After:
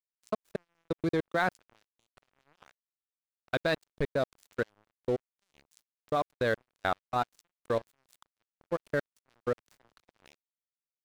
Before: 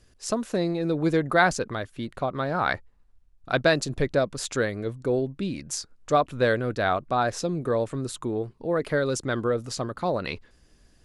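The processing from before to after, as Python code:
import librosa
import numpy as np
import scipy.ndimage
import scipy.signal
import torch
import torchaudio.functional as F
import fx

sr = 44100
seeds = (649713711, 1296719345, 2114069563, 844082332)

y = fx.high_shelf(x, sr, hz=2200.0, db=9.5, at=(7.57, 8.54))
y = fx.level_steps(y, sr, step_db=23)
y = np.sign(y) * np.maximum(np.abs(y) - 10.0 ** (-39.5 / 20.0), 0.0)
y = fx.gate_flip(y, sr, shuts_db=-46.0, range_db=-42, at=(2.7, 3.52), fade=0.02)
y = fx.band_squash(y, sr, depth_pct=100, at=(9.57, 10.06))
y = y * librosa.db_to_amplitude(-2.5)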